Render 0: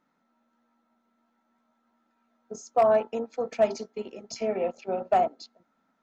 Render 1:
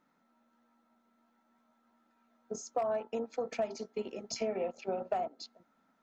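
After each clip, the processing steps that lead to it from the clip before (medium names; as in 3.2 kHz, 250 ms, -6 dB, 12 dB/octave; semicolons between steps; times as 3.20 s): compression 6:1, threshold -31 dBFS, peak gain reduction 13.5 dB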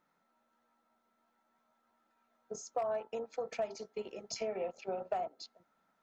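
peaking EQ 250 Hz -10.5 dB 0.49 oct; trim -2 dB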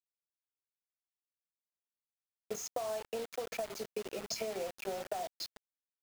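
compression 6:1, threshold -45 dBFS, peak gain reduction 14 dB; bit crusher 9-bit; trim +9 dB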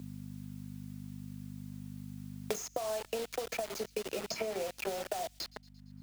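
feedback echo behind a high-pass 114 ms, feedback 41%, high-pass 2.9 kHz, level -21.5 dB; hum 50 Hz, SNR 25 dB; three bands compressed up and down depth 100%; trim +2.5 dB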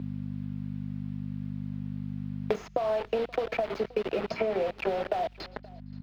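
distance through air 370 m; delay 526 ms -23.5 dB; in parallel at -10 dB: saturation -36 dBFS, distortion -11 dB; on the sum: trim +7.5 dB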